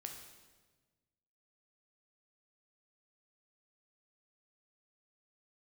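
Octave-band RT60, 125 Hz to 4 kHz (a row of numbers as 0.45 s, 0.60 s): 1.9 s, 1.7 s, 1.5 s, 1.2 s, 1.2 s, 1.1 s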